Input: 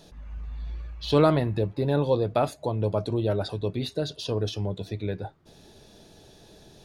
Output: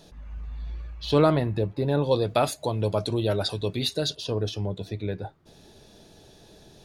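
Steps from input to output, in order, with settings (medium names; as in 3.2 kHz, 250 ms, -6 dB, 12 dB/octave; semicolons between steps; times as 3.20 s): 2.11–4.15 s: treble shelf 2.2 kHz +11.5 dB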